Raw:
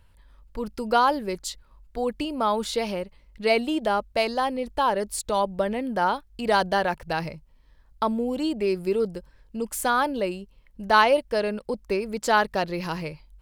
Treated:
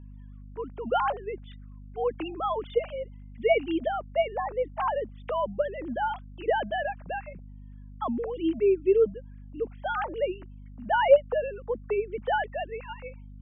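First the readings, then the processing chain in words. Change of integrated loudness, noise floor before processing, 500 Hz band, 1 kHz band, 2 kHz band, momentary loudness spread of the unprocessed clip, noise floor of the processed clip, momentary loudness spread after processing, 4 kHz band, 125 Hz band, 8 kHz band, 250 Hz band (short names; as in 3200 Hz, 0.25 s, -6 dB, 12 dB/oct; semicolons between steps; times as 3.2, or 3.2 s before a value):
-3.0 dB, -57 dBFS, -0.5 dB, -5.5 dB, -6.5 dB, 13 LU, -45 dBFS, 20 LU, -10.5 dB, -4.0 dB, under -40 dB, -6.0 dB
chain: sine-wave speech; hum 50 Hz, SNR 16 dB; gain -3 dB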